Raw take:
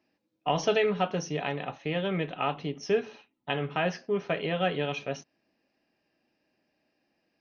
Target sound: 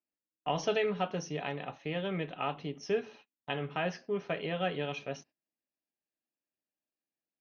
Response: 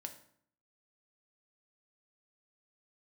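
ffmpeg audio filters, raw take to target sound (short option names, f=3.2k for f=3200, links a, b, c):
-af "agate=range=-20dB:threshold=-51dB:ratio=16:detection=peak,volume=-5dB"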